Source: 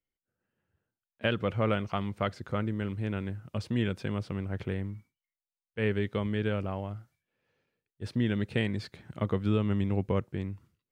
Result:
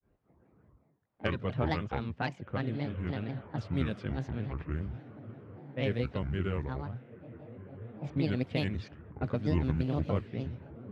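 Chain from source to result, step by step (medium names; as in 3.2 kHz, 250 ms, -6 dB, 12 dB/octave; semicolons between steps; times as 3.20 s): high-pass 55 Hz; bass shelf 120 Hz +6 dB; echo that smears into a reverb 1562 ms, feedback 51%, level -14.5 dB; upward compressor, threshold -39 dBFS; granulator 152 ms, grains 17 per s, spray 12 ms, pitch spread up and down by 7 st; level-controlled noise filter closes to 820 Hz, open at -24.5 dBFS; Chebyshev shaper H 3 -23 dB, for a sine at -14.5 dBFS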